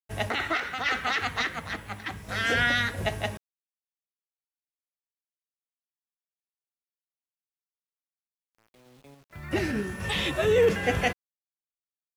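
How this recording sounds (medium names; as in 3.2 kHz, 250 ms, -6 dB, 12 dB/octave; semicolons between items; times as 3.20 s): random-step tremolo; a quantiser's noise floor 10-bit, dither none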